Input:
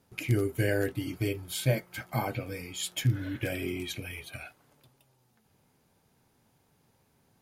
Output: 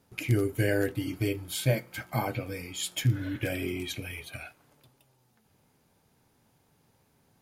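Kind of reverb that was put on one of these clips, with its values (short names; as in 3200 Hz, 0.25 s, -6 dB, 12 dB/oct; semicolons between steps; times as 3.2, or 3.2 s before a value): FDN reverb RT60 0.57 s, high-frequency decay 0.95×, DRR 19.5 dB; gain +1 dB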